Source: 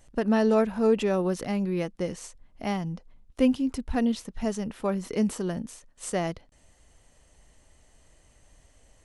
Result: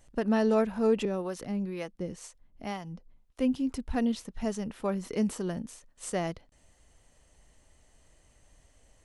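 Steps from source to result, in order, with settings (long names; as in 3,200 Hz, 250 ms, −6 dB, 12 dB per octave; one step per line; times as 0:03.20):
0:01.05–0:03.55: two-band tremolo in antiphase 2 Hz, depth 70%, crossover 450 Hz
level −3 dB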